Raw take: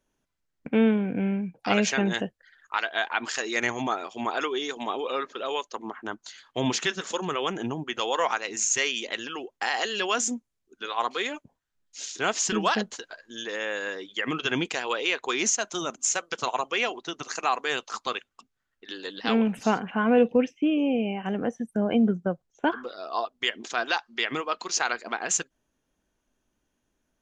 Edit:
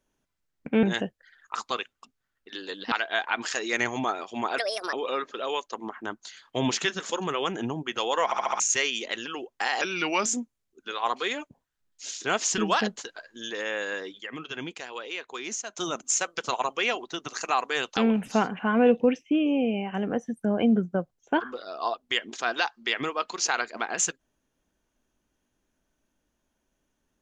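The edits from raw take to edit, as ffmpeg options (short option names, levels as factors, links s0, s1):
-filter_complex "[0:a]asplit=16[s0][s1][s2][s3][s4][s5][s6][s7][s8][s9][s10][s11][s12][s13][s14][s15];[s0]atrim=end=0.832[s16];[s1]atrim=start=2.028:end=2.752[s17];[s2]atrim=start=17.908:end=19.282[s18];[s3]atrim=start=2.748:end=4.414[s19];[s4]atrim=start=4.41:end=4.94,asetpts=PTS-STARTPTS,asetrate=67032,aresample=44100[s20];[s5]atrim=start=4.936:end=8.332[s21];[s6]atrim=start=8.258:end=8.332[s22];[s7]atrim=start=8.258:end=8.332[s23];[s8]atrim=start=8.258:end=8.332[s24];[s9]atrim=start=8.258:end=8.332[s25];[s10]atrim=start=8.608:end=9.824[s26];[s11]atrim=start=9.82:end=10.2,asetpts=PTS-STARTPTS,asetrate=37485,aresample=44100,atrim=end_sample=19715,asetpts=PTS-STARTPTS[s27];[s12]atrim=start=10.196:end=14.152[s28];[s13]atrim=start=14.148:end=15.712,asetpts=PTS-STARTPTS,volume=0.355[s29];[s14]atrim=start=15.708:end=17.912[s30];[s15]atrim=start=19.278[s31];[s16][s17]acrossfade=d=0.004:c1=hsin:c2=hsin[s32];[s32][s18]acrossfade=d=0.004:c1=hsin:c2=hsin[s33];[s33][s19]acrossfade=d=0.004:c1=hsin:c2=hsin[s34];[s34][s20]acrossfade=d=0.004:c1=hsin:c2=hsin[s35];[s35][s21]acrossfade=d=0.004:c1=hsin:c2=hsin[s36];[s36][s22]acrossfade=d=0.004:c1=hsin:c2=hsin[s37];[s37][s23]acrossfade=d=0.004:c1=hsin:c2=hsin[s38];[s38][s24]acrossfade=d=0.004:c1=hsin:c2=hsin[s39];[s39][s25]acrossfade=d=0.004:c1=hsin:c2=hsin[s40];[s40][s26]acrossfade=d=0.004:c1=hsin:c2=hsin[s41];[s41][s27]acrossfade=d=0.004:c1=hsin:c2=hsin[s42];[s42][s28]acrossfade=d=0.004:c1=hsin:c2=hsin[s43];[s43][s29]acrossfade=d=0.004:c1=hsin:c2=hsin[s44];[s44][s30]acrossfade=d=0.004:c1=hsin:c2=hsin[s45];[s45][s31]acrossfade=d=0.004:c1=hsin:c2=hsin"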